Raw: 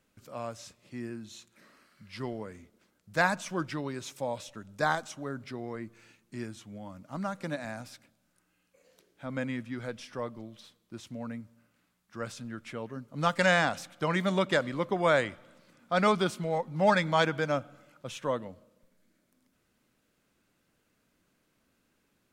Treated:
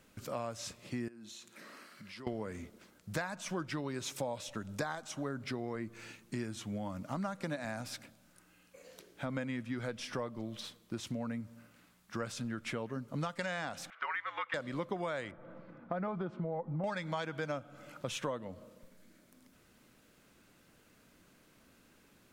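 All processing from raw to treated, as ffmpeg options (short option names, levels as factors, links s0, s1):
-filter_complex "[0:a]asettb=1/sr,asplit=3[s0][s1][s2];[s0]atrim=end=1.084[s3];[s1]atrim=start=1.08:end=2.27,asetpts=PTS-STARTPTS,afade=t=in:d=0.004:c=qsin,afade=t=out:st=1.186:d=0.004:c=qsin,highpass=190,acompressor=threshold=0.00158:ratio=5:attack=3.2:release=140:knee=1:detection=peak[s4];[s2]atrim=start=2.266[s5];[s3][s4]acrossfade=d=0.004:c1=hsin:c2=qsin[s6];[s6][s5]acrossfade=d=0.004:c1=qsin:c2=hsin,asettb=1/sr,asplit=3[s7][s8][s9];[s7]atrim=end=13.904[s10];[s8]atrim=start=13.9:end=14.54,asetpts=PTS-STARTPTS,afade=t=in:d=0.004:c=qsin,afade=t=out:st=0.636:d=0.004:c=qsin,asuperpass=centerf=1700:order=4:qfactor=1.3,afreqshift=-70[s11];[s9]atrim=start=14.536[s12];[s10][s11]acrossfade=d=0.004:c1=hsin:c2=qsin[s13];[s13][s12]acrossfade=d=0.004:c1=qsin:c2=hsin,asettb=1/sr,asplit=3[s14][s15][s16];[s14]atrim=end=15.314[s17];[s15]atrim=start=15.31:end=16.84,asetpts=PTS-STARTPTS,afade=t=in:d=0.004:c=qsin,afade=t=out:st=1.526:d=0.004:c=qsin,lowpass=1200,aecho=1:1:6:0.34,atrim=end_sample=67473,acompressor=threshold=0.0178:ratio=2:attack=3.2:release=140:knee=1:detection=peak[s18];[s16]atrim=start=16.836[s19];[s17][s18]acrossfade=d=0.004:c1=hsin:c2=qsin[s20];[s20][s19]acrossfade=d=0.004:c1=qsin:c2=hsin,alimiter=limit=0.119:level=0:latency=1:release=444,acompressor=threshold=0.00631:ratio=5,volume=2.66"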